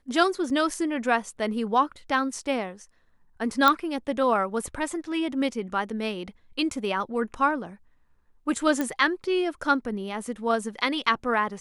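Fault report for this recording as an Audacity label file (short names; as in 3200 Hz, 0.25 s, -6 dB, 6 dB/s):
0.500000	0.500000	gap 2.4 ms
3.680000	3.680000	pop -6 dBFS
8.810000	8.810000	pop -13 dBFS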